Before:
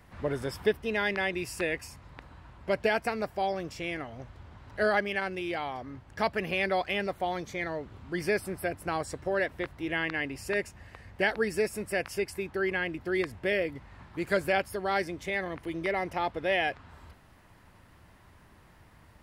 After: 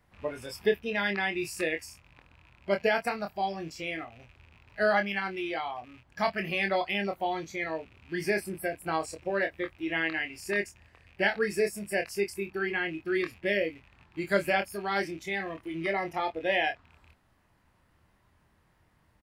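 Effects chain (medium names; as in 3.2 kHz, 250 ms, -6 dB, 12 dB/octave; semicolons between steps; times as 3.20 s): rattle on loud lows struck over -47 dBFS, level -34 dBFS; spectral noise reduction 11 dB; doubling 25 ms -6 dB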